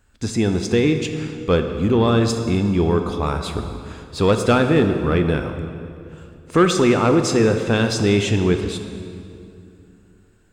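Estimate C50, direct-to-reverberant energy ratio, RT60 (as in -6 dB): 7.0 dB, 6.0 dB, 2.6 s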